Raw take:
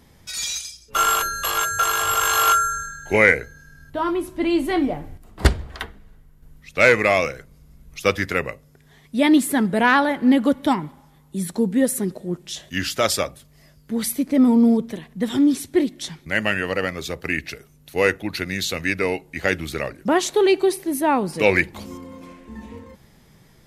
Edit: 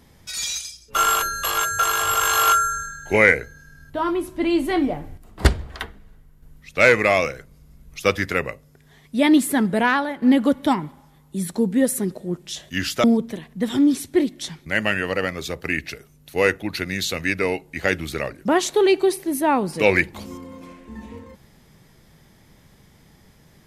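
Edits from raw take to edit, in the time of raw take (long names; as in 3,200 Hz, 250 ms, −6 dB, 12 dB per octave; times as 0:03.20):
0:09.76–0:10.22: fade out quadratic, to −7 dB
0:13.04–0:14.64: remove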